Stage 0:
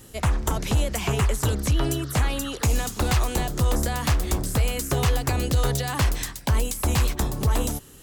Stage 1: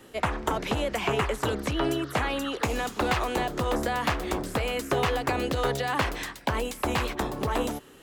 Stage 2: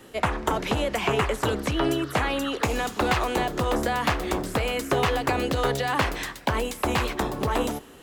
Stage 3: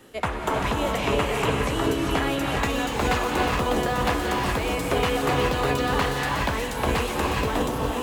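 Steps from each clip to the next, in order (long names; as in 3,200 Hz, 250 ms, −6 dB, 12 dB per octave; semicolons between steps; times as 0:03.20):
three-way crossover with the lows and the highs turned down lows −15 dB, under 230 Hz, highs −14 dB, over 3,500 Hz; level +2.5 dB
convolution reverb, pre-delay 3 ms, DRR 18.5 dB; level +2.5 dB
reverb whose tail is shaped and stops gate 440 ms rising, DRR −1.5 dB; level −2.5 dB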